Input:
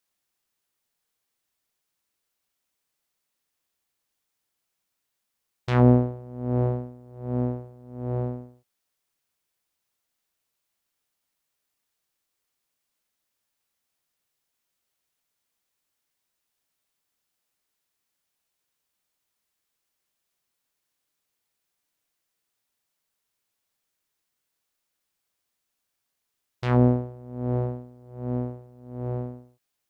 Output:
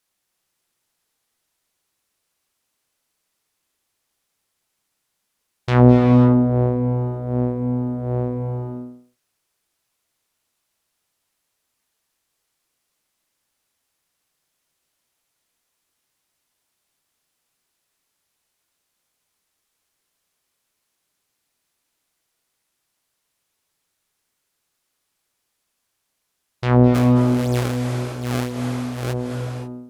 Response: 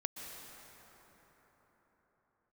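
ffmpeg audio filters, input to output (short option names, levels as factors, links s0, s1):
-filter_complex "[0:a]asplit=3[s0][s1][s2];[s0]afade=t=out:st=26.94:d=0.02[s3];[s1]acrusher=samples=27:mix=1:aa=0.000001:lfo=1:lforange=43.2:lforate=2.9,afade=t=in:st=26.94:d=0.02,afade=t=out:st=29.12:d=0.02[s4];[s2]afade=t=in:st=29.12:d=0.02[s5];[s3][s4][s5]amix=inputs=3:normalize=0[s6];[1:a]atrim=start_sample=2205,afade=t=out:st=0.36:d=0.01,atrim=end_sample=16317,asetrate=25137,aresample=44100[s7];[s6][s7]afir=irnorm=-1:irlink=0,volume=1.78"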